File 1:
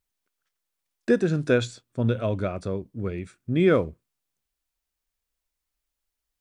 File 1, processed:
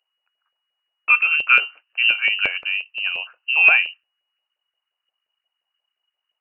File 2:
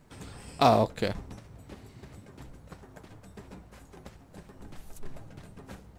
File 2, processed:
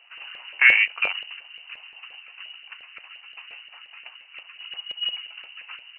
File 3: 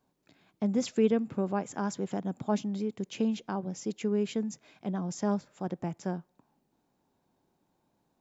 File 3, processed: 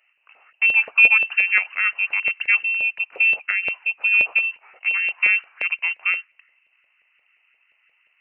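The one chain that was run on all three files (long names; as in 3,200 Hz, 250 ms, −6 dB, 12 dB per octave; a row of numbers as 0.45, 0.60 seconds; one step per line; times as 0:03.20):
voice inversion scrambler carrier 2,900 Hz
auto-filter high-pass saw up 5.7 Hz 550–1,700 Hz
normalise the peak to −1.5 dBFS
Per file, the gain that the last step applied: +3.5, +2.5, +9.0 decibels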